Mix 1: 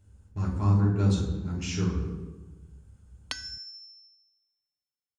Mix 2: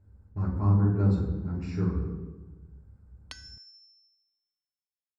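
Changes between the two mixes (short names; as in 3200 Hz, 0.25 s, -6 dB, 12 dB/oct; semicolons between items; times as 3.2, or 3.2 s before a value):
speech: add running mean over 14 samples; background -9.0 dB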